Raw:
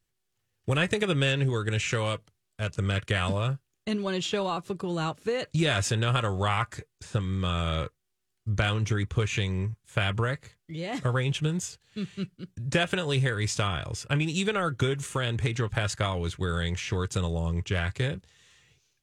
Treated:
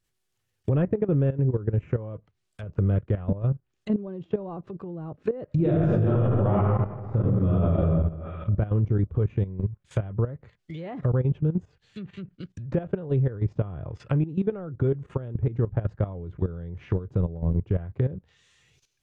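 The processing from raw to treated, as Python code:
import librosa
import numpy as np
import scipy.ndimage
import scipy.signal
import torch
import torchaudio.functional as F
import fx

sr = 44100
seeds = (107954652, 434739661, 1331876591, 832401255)

y = fx.peak_eq(x, sr, hz=4400.0, db=-10.5, octaves=0.98, at=(0.82, 2.14))
y = fx.reverb_throw(y, sr, start_s=5.46, length_s=2.31, rt60_s=1.8, drr_db=-6.5)
y = fx.env_lowpass_down(y, sr, base_hz=510.0, full_db=-27.0)
y = fx.level_steps(y, sr, step_db=14)
y = F.gain(torch.from_numpy(y), 7.0).numpy()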